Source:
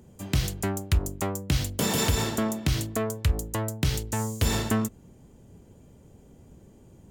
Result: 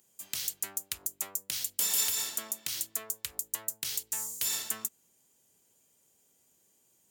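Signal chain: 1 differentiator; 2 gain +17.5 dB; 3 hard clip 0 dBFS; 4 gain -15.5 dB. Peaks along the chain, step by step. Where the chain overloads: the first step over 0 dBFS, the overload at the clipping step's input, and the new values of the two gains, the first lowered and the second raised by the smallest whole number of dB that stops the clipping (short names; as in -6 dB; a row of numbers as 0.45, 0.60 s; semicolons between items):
-14.5, +3.0, 0.0, -15.5 dBFS; step 2, 3.0 dB; step 2 +14.5 dB, step 4 -12.5 dB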